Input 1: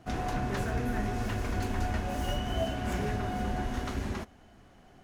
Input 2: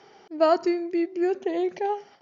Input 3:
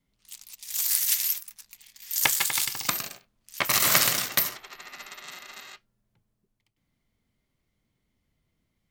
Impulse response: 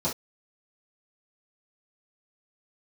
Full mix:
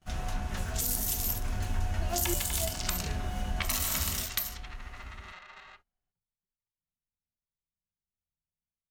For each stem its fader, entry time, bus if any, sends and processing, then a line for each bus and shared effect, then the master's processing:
−5.5 dB, 0.00 s, bus A, send −10.5 dB, echo send −8.5 dB, low-shelf EQ 70 Hz +11.5 dB
+1.0 dB, 1.60 s, no bus, no send, no echo send, step-sequenced resonator 2.7 Hz 190–550 Hz
−7.0 dB, 0.00 s, bus A, send −16.5 dB, no echo send, low-pass that shuts in the quiet parts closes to 910 Hz, open at −23.5 dBFS; automatic gain control gain up to 6 dB
bus A: 0.0 dB, high-shelf EQ 2,500 Hz +10.5 dB; downward compressor 6 to 1, threshold −28 dBFS, peak gain reduction 13.5 dB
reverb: on, pre-delay 3 ms
echo: single-tap delay 1,086 ms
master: noise gate −55 dBFS, range −20 dB; parametric band 250 Hz −10 dB 2.7 octaves

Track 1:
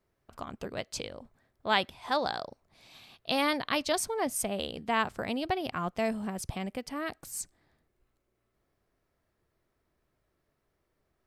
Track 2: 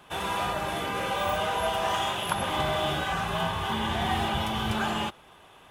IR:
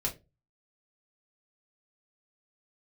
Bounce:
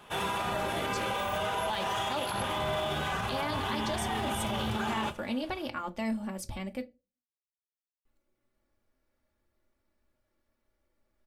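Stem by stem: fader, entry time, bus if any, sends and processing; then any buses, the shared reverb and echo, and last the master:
−7.0 dB, 0.00 s, muted 0:06.84–0:08.05, send −7.5 dB, comb filter 3.5 ms, depth 75%
−2.5 dB, 0.00 s, send −9.5 dB, no processing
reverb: on, RT60 0.25 s, pre-delay 4 ms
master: brickwall limiter −23 dBFS, peak gain reduction 11 dB

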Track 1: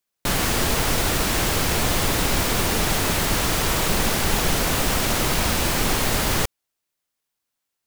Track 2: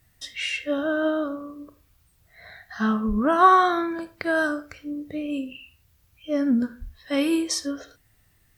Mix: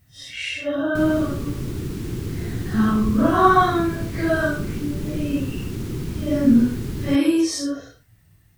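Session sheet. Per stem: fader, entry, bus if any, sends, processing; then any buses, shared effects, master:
−19.5 dB, 0.70 s, no send, low shelf with overshoot 480 Hz +9 dB, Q 3
+0.5 dB, 0.00 s, no send, random phases in long frames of 200 ms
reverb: not used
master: parametric band 120 Hz +12 dB 1.7 octaves

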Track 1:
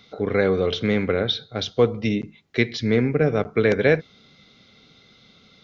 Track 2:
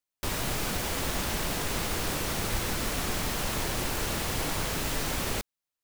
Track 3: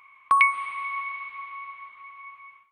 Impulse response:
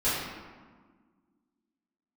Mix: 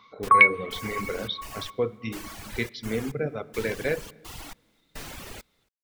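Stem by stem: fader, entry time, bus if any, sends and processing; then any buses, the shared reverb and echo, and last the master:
−10.5 dB, 0.00 s, send −17.5 dB, no echo send, no processing
−8.0 dB, 0.00 s, no send, echo send −22.5 dB, gate pattern "xx...xxxx." 106 BPM −24 dB
+2.0 dB, 0.00 s, no send, no echo send, low-pass that shuts in the quiet parts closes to 990 Hz, open at −18 dBFS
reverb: on, RT60 1.5 s, pre-delay 4 ms
echo: single-tap delay 275 ms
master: reverb reduction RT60 1.6 s; parametric band 2,300 Hz +2.5 dB 1.4 octaves

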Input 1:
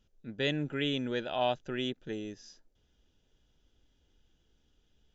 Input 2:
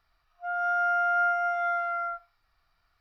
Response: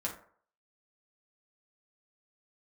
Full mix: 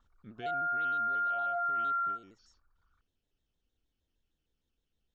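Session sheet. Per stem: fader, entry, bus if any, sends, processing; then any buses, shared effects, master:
0:01.40 −5 dB → 0:02.19 −12.5 dB, 0.00 s, no send, downward compressor 5 to 1, threshold −40 dBFS, peak gain reduction 14 dB; pitch modulation by a square or saw wave square 6.5 Hz, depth 160 cents
−0.5 dB, 0.00 s, no send, spectral envelope exaggerated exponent 3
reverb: not used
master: brickwall limiter −27 dBFS, peak gain reduction 6.5 dB

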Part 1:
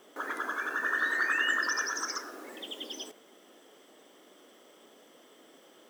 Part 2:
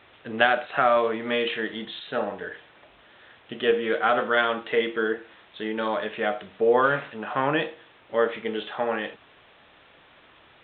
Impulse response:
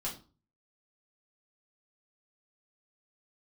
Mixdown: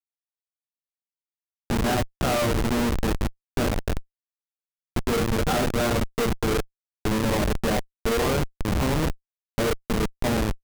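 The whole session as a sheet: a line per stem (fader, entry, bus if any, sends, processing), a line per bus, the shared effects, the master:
−13.5 dB, 0.00 s, no send, Bessel low-pass filter 2,300 Hz, order 2
−0.5 dB, 1.45 s, send −4.5 dB, spectral tilt −3 dB per octave; multiband upward and downward compressor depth 70%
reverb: on, RT60 0.35 s, pre-delay 5 ms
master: comparator with hysteresis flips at −18 dBFS

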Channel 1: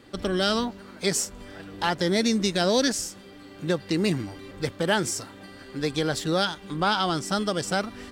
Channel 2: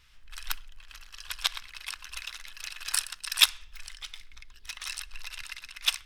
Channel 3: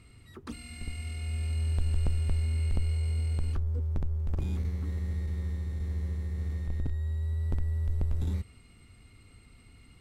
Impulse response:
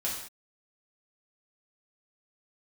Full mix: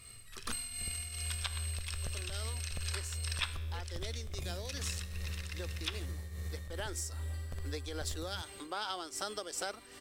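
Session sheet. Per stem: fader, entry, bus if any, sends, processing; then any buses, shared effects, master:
0:06.45 −13.5 dB → 0:07.16 −4 dB, 1.90 s, bus A, no send, high-pass filter 310 Hz 24 dB per octave
−1.5 dB, 0.00 s, no bus, no send, treble cut that deepens with the level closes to 1,900 Hz, closed at −25.5 dBFS; tuned comb filter 72 Hz, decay 1.1 s, harmonics all, mix 60%
+1.5 dB, 0.00 s, bus A, no send, spectral tilt +2 dB per octave; comb filter 1.7 ms, depth 56%
bus A: 0.0 dB, shaped tremolo triangle 2.5 Hz, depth 70%; downward compressor 4 to 1, threshold −37 dBFS, peak gain reduction 10 dB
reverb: not used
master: high-shelf EQ 5,800 Hz +9 dB

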